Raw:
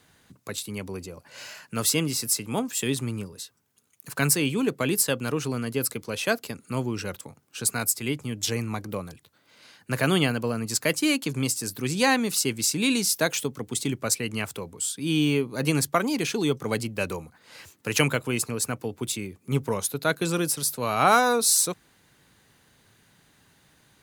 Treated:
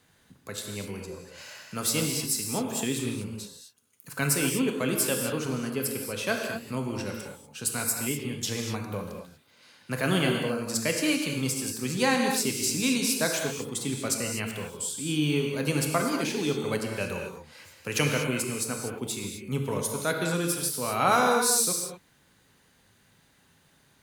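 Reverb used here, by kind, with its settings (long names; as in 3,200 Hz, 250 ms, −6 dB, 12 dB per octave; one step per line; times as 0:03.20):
reverb whose tail is shaped and stops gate 270 ms flat, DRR 1.5 dB
level −4.5 dB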